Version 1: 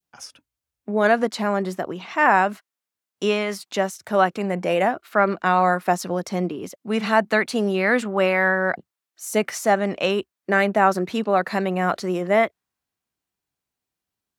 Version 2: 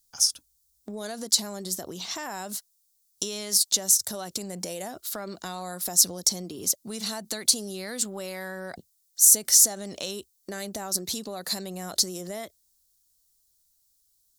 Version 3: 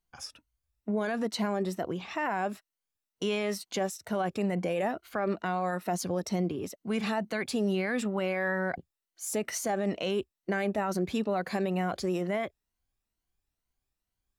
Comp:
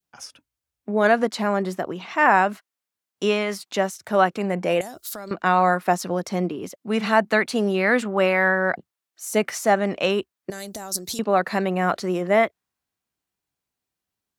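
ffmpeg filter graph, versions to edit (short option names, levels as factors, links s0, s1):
-filter_complex "[1:a]asplit=2[s0][s1];[0:a]asplit=3[s2][s3][s4];[s2]atrim=end=4.812[s5];[s0]atrim=start=4.808:end=5.312[s6];[s3]atrim=start=5.308:end=10.502[s7];[s1]atrim=start=10.498:end=11.192[s8];[s4]atrim=start=11.188[s9];[s5][s6]acrossfade=d=0.004:c1=hsin:c2=hsin[s10];[s10][s7]acrossfade=d=0.004:c1=hsin:c2=hsin[s11];[s11][s8]acrossfade=d=0.004:c1=hsin:c2=hsin[s12];[s12][s9]acrossfade=d=0.004:c1=hsin:c2=hsin"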